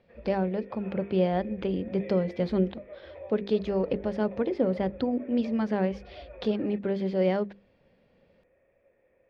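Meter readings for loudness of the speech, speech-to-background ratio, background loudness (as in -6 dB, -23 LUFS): -29.0 LUFS, 17.0 dB, -46.0 LUFS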